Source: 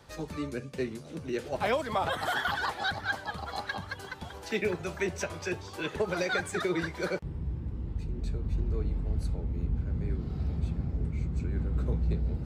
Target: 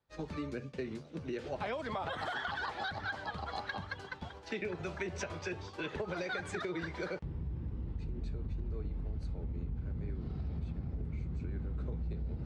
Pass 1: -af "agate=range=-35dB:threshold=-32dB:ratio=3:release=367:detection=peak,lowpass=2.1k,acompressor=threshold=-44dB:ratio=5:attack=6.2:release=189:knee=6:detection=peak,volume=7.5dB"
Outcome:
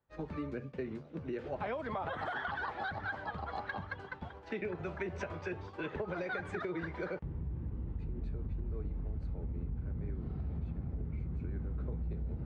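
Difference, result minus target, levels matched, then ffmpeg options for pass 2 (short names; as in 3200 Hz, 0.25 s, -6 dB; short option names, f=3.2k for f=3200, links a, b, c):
4000 Hz band -8.0 dB
-af "agate=range=-35dB:threshold=-32dB:ratio=3:release=367:detection=peak,lowpass=4.9k,acompressor=threshold=-44dB:ratio=5:attack=6.2:release=189:knee=6:detection=peak,volume=7.5dB"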